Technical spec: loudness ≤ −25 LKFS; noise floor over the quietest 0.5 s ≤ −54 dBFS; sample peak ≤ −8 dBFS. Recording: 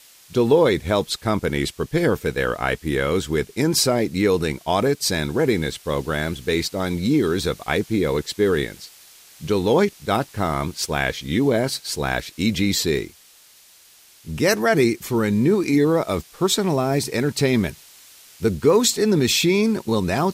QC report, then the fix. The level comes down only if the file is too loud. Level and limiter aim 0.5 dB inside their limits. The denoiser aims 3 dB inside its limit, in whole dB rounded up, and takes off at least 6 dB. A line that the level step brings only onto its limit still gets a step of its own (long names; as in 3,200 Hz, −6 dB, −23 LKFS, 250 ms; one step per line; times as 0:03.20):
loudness −21.0 LKFS: out of spec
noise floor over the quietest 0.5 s −51 dBFS: out of spec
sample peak −5.0 dBFS: out of spec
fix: level −4.5 dB